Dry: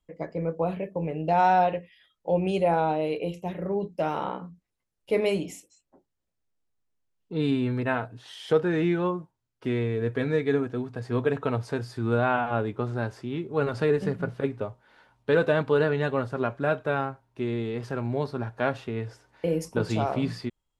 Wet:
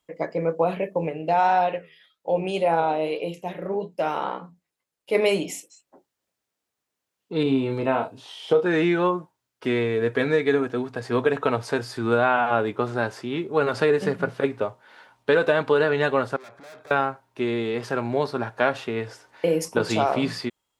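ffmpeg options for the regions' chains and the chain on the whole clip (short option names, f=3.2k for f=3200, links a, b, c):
-filter_complex "[0:a]asettb=1/sr,asplit=3[a][b][c];[a]atrim=end=1.094[d];[b]atrim=start=1.09:end=5.15,asetpts=PTS-STARTPTS,afade=t=in:d=0.004:c=qsin,afade=t=out:st=4.056:d=0.004:c=qsin,bandreject=f=5.7k:w=26,flanger=delay=5.9:depth=6.8:regen=79:speed=1.8:shape=sinusoidal[e];[c]atrim=start=5.146[f];[d][e]acrossfade=d=0.004:c1=hsin:c2=qsin[g];[g][f]acrossfade=d=0.004:c1=qsin:c2=hsin,asettb=1/sr,asplit=3[h][i][j];[h]atrim=end=7.434[k];[i]atrim=start=7.43:end=8.66,asetpts=PTS-STARTPTS,afade=t=in:d=0.004:c=qsin,afade=t=out:st=1.226:d=0.004:c=qsin,acrossover=split=2900[l][m];[m]acompressor=threshold=-55dB:ratio=4:attack=1:release=60[n];[l][n]amix=inputs=2:normalize=0,equalizer=f=1.7k:t=o:w=0.66:g=-14,asplit=2[o][p];[p]adelay=30,volume=-5.5dB[q];[o][q]amix=inputs=2:normalize=0,atrim=end_sample=54243[r];[j]atrim=start=8.656[s];[k][r]acrossfade=d=0.004:c1=hsin:c2=qsin[t];[t][s]acrossfade=d=0.004:c1=qsin:c2=hsin,asettb=1/sr,asplit=3[u][v][w];[u]atrim=end=16.364[x];[v]atrim=start=16.36:end=16.91,asetpts=PTS-STARTPTS,afade=t=in:d=0.004:c=qsin,afade=t=out:st=0.546:d=0.004:c=qsin,aeval=exprs='(tanh(112*val(0)+0.7)-tanh(0.7))/112':c=same,acompressor=threshold=-47dB:ratio=10:attack=3.2:release=140:knee=1:detection=peak,bandreject=f=2.9k:w=5.9[y];[w]atrim=start=16.906[z];[x][y]acrossfade=d=0.004:c1=hsin:c2=qsin[aa];[aa][z]acrossfade=d=0.004:c1=qsin:c2=hsin,highpass=f=450:p=1,acompressor=threshold=-24dB:ratio=6,volume=9dB"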